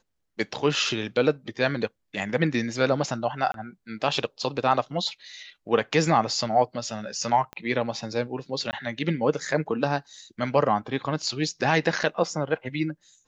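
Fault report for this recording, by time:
3.52–3.54 gap 22 ms
7.53 pop -23 dBFS
8.71–8.73 gap 19 ms

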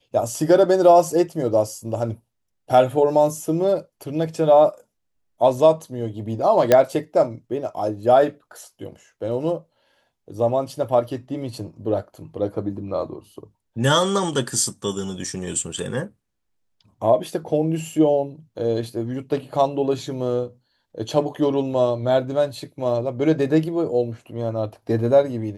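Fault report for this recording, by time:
6.72 pop -2 dBFS

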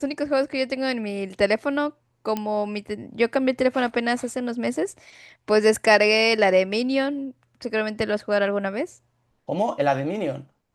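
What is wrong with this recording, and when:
2.37 pop -13 dBFS

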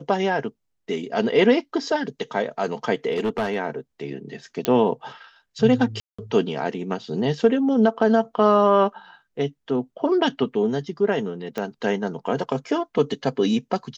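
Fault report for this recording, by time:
3.12–3.57 clipped -18.5 dBFS
4.65 pop -6 dBFS
6–6.18 gap 0.185 s
11.58 pop -15 dBFS

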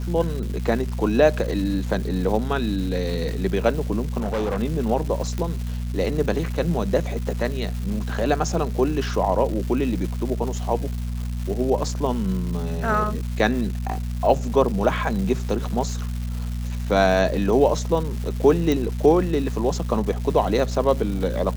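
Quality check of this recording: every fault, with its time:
crackle 510/s -31 dBFS
hum 60 Hz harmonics 4 -27 dBFS
4.18–4.61 clipped -20.5 dBFS
5.38 pop -15 dBFS
18.72 pop

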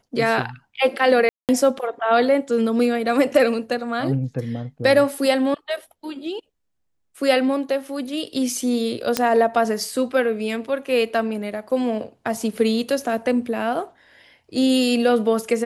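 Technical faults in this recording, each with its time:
1.29–1.49 gap 0.198 s
9.17 pop -3 dBFS

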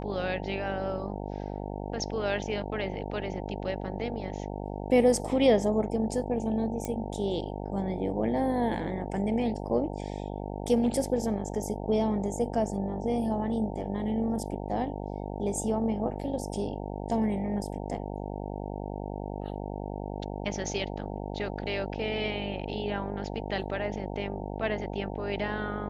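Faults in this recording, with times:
buzz 50 Hz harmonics 18 -36 dBFS
6.85 pop -19 dBFS

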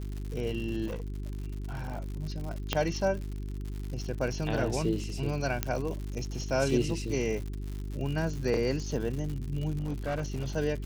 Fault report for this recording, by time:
crackle 140/s -36 dBFS
hum 50 Hz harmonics 8 -36 dBFS
0.86–2.06 clipped -31.5 dBFS
2.73 pop -11 dBFS
5.63 pop -11 dBFS
9.8–10.54 clipped -27.5 dBFS

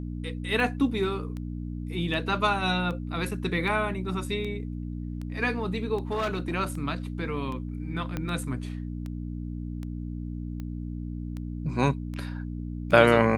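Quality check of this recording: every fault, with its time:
hum 60 Hz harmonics 5 -34 dBFS
tick 78 rpm
6.11–6.54 clipped -24 dBFS
8.17 pop -17 dBFS

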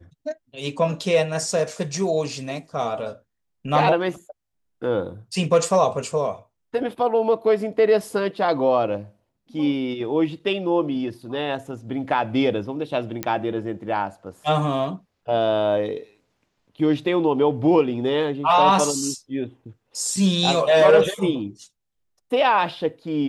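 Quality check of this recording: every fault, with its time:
13.23 pop -9 dBFS

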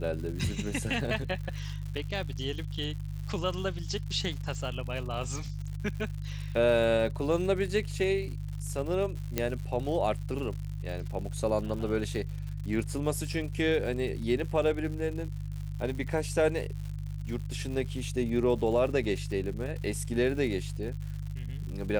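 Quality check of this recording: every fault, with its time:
crackle 150/s -38 dBFS
hum 50 Hz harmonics 3 -36 dBFS
9.38 pop -12 dBFS

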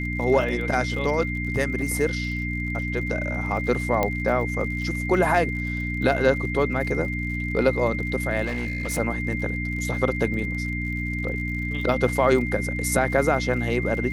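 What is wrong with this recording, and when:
crackle 55/s -34 dBFS
hum 60 Hz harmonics 5 -29 dBFS
tone 2100 Hz -30 dBFS
4.03 pop -9 dBFS
8.45–8.99 clipped -23.5 dBFS

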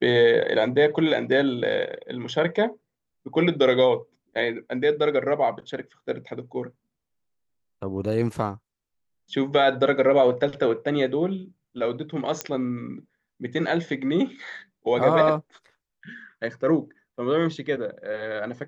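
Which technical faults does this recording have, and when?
12.41 pop -10 dBFS

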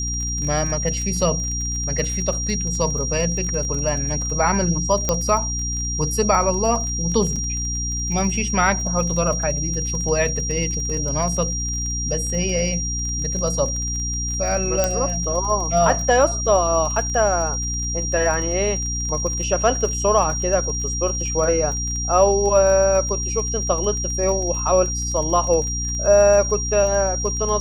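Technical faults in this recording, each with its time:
crackle 28/s -27 dBFS
hum 60 Hz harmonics 5 -27 dBFS
tone 5700 Hz -25 dBFS
5.09 pop -5 dBFS
7.36 gap 4.2 ms
14.84 pop -5 dBFS

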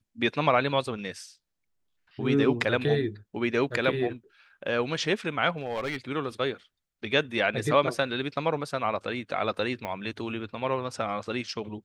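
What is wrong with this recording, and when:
5.57–5.96 clipped -26 dBFS
9.85 pop -19 dBFS

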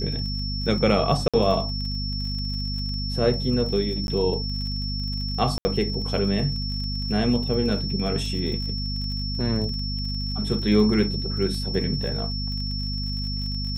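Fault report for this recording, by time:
crackle 36/s -32 dBFS
hum 50 Hz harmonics 5 -29 dBFS
tone 5400 Hz -31 dBFS
1.28–1.34 gap 56 ms
4.07–4.08 gap 11 ms
5.58–5.65 gap 70 ms

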